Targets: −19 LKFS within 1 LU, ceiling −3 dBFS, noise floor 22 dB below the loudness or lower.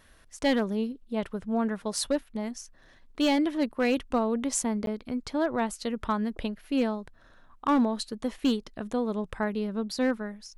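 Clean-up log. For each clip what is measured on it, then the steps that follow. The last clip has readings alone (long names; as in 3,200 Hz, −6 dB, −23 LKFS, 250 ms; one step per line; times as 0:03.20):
share of clipped samples 0.6%; peaks flattened at −18.0 dBFS; number of dropouts 1; longest dropout 12 ms; integrated loudness −29.5 LKFS; sample peak −18.0 dBFS; target loudness −19.0 LKFS
→ clipped peaks rebuilt −18 dBFS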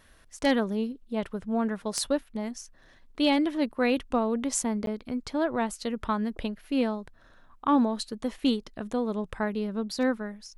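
share of clipped samples 0.0%; number of dropouts 1; longest dropout 12 ms
→ repair the gap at 0:04.86, 12 ms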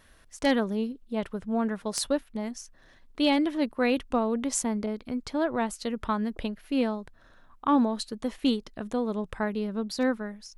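number of dropouts 0; integrated loudness −29.0 LKFS; sample peak −9.0 dBFS; target loudness −19.0 LKFS
→ level +10 dB
brickwall limiter −3 dBFS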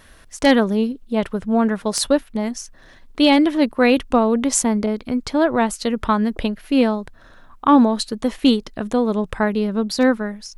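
integrated loudness −19.0 LKFS; sample peak −3.0 dBFS; background noise floor −47 dBFS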